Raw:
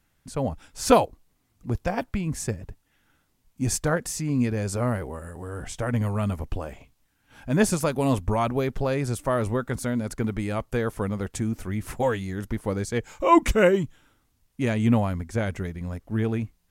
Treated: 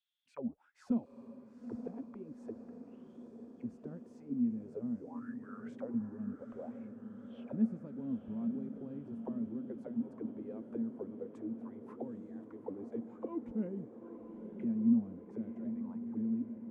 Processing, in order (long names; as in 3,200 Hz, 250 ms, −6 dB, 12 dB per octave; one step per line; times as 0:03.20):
envelope filter 230–3,500 Hz, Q 10, down, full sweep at −21.5 dBFS
feedback delay with all-pass diffusion 902 ms, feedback 68%, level −9 dB
level −3.5 dB